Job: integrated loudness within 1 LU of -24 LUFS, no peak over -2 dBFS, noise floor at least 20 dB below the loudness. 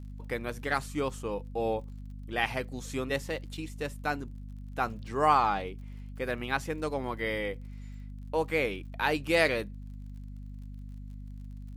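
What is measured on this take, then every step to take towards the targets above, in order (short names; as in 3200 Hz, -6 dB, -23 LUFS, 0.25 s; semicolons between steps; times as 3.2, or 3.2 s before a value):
ticks 45/s; hum 50 Hz; harmonics up to 250 Hz; hum level -39 dBFS; loudness -31.5 LUFS; peak -10.5 dBFS; loudness target -24.0 LUFS
-> de-click; de-hum 50 Hz, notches 5; gain +7.5 dB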